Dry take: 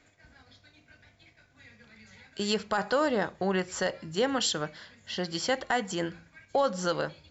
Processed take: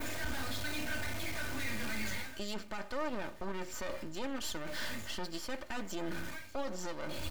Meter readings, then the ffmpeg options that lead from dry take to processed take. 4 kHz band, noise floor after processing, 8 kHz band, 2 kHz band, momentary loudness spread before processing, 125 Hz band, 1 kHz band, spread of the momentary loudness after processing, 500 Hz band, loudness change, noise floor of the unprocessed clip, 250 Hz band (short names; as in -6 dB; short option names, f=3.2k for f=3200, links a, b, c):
-7.5 dB, -47 dBFS, n/a, -4.0 dB, 9 LU, -5.0 dB, -10.5 dB, 4 LU, -11.5 dB, -9.5 dB, -63 dBFS, -7.5 dB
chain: -af "aeval=exprs='val(0)+0.5*0.0075*sgn(val(0))':c=same,areverse,acompressor=threshold=-40dB:ratio=16,areverse,adynamicequalizer=threshold=0.00126:dfrequency=4800:dqfactor=0.71:tfrequency=4800:tqfactor=0.71:attack=5:release=100:ratio=0.375:range=1.5:mode=cutabove:tftype=bell,alimiter=level_in=15.5dB:limit=-24dB:level=0:latency=1:release=254,volume=-15.5dB,aeval=exprs='max(val(0),0)':c=same,aecho=1:1:3.3:0.49,volume=13dB"